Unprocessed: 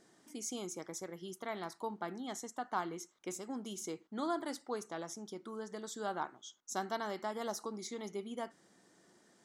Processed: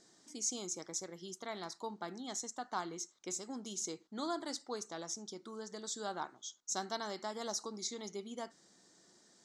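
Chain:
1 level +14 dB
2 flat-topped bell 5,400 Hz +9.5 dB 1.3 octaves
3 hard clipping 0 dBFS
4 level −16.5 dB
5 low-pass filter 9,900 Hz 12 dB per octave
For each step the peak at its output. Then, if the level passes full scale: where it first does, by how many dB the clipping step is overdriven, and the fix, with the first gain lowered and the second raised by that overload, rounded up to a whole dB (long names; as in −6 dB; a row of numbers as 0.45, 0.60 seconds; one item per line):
−7.5, −5.5, −5.5, −22.0, −22.0 dBFS
no step passes full scale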